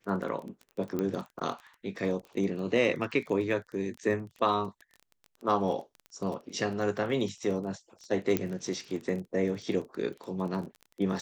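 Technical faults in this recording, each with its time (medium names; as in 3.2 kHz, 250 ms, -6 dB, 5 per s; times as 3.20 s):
crackle 21 per s -37 dBFS
0.99 s: pop -19 dBFS
8.37 s: pop -13 dBFS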